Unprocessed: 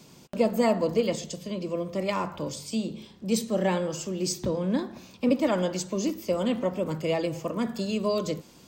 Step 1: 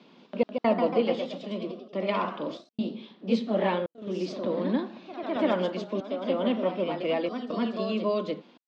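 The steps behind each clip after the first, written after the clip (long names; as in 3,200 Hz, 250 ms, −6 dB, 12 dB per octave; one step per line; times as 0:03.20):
elliptic band-pass filter 210–3,600 Hz, stop band 50 dB
gate pattern "xx.xxxxx.xxx.xxx" 70 BPM −60 dB
delay with pitch and tempo change per echo 175 ms, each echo +1 semitone, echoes 3, each echo −6 dB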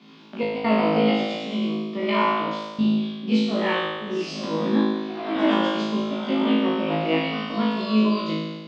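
parametric band 530 Hz −10.5 dB 0.82 octaves
on a send: flutter between parallel walls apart 3.2 metres, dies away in 1.3 s
on the sum: level +2.5 dB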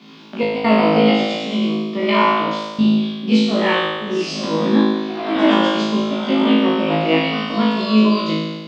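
high-shelf EQ 5,500 Hz +5.5 dB
level +6 dB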